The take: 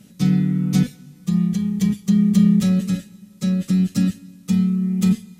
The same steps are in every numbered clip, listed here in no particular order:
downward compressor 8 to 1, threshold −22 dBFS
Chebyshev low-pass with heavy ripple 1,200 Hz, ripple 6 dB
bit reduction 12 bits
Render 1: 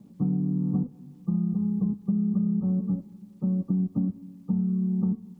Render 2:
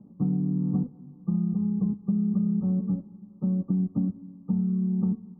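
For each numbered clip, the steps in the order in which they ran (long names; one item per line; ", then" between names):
Chebyshev low-pass with heavy ripple, then bit reduction, then downward compressor
bit reduction, then Chebyshev low-pass with heavy ripple, then downward compressor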